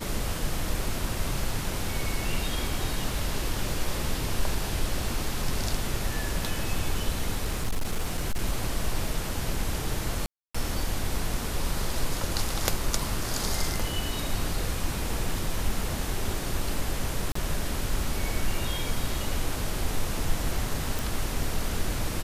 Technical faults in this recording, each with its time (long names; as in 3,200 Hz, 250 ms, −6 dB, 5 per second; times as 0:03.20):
0:07.45–0:08.40: clipping −22.5 dBFS
0:10.26–0:10.54: drop-out 285 ms
0:17.32–0:17.35: drop-out 34 ms
0:20.99: click